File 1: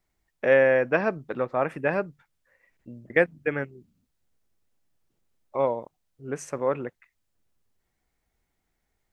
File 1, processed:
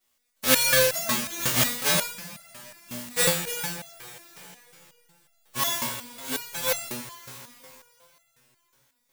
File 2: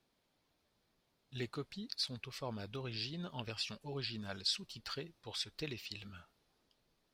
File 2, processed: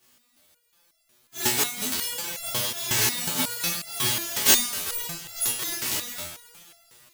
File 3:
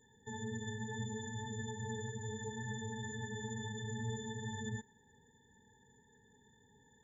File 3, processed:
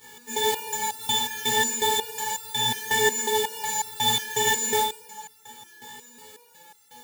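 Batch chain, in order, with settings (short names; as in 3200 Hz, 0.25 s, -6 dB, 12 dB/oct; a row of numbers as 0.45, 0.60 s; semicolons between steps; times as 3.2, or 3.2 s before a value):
spectral whitening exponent 0.1; two-slope reverb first 0.45 s, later 3.5 s, from -18 dB, DRR -5.5 dB; stepped resonator 5.5 Hz 61–680 Hz; match loudness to -24 LUFS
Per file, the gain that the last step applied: +5.5, +20.5, +22.5 dB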